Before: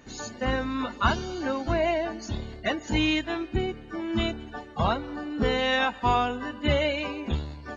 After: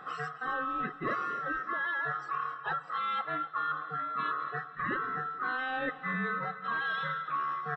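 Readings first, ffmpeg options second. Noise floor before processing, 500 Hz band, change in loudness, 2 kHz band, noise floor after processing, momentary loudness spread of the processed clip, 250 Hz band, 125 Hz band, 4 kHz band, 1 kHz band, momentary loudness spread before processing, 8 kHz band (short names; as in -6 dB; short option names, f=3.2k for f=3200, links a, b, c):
-44 dBFS, -14.5 dB, -5.5 dB, -1.5 dB, -47 dBFS, 3 LU, -14.5 dB, -14.5 dB, -15.0 dB, -2.0 dB, 8 LU, n/a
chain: -af "afftfilt=real='real(if(lt(b,960),b+48*(1-2*mod(floor(b/48),2)),b),0)':imag='imag(if(lt(b,960),b+48*(1-2*mod(floor(b/48),2)),b),0)':win_size=2048:overlap=0.75,lowpass=1.8k,lowshelf=f=120:t=q:w=1.5:g=-13.5,areverse,acompressor=threshold=-38dB:ratio=8,areverse,aecho=1:1:263|526|789|1052:0.158|0.0697|0.0307|0.0135,volume=7dB"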